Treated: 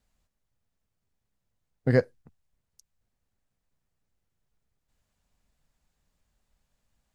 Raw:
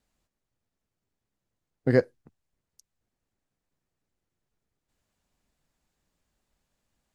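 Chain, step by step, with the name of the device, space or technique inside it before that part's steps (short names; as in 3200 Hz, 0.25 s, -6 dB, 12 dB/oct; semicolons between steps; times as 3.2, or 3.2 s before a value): low shelf boost with a cut just above (low shelf 88 Hz +7.5 dB; bell 330 Hz -5.5 dB 0.62 oct)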